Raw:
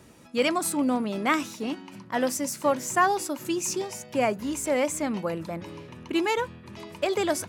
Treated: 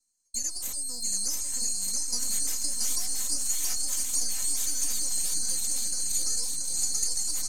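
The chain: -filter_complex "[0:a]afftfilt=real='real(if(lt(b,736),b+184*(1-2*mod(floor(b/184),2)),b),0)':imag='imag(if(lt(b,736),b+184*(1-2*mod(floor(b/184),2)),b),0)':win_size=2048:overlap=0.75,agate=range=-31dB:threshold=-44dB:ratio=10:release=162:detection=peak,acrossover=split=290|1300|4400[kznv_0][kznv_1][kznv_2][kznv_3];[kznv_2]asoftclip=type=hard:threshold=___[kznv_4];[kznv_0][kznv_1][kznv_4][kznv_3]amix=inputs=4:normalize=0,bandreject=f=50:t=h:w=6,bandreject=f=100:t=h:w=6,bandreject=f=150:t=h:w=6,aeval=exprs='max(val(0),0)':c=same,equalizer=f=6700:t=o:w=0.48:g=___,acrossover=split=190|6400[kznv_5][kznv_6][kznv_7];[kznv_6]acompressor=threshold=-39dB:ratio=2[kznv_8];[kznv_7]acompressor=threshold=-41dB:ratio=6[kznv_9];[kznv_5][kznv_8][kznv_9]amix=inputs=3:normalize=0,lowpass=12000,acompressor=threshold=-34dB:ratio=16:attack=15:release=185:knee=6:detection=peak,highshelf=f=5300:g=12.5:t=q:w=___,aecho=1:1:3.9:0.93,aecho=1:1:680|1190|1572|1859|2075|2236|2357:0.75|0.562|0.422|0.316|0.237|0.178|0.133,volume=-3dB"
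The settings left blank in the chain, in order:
-35dB, 11, 1.5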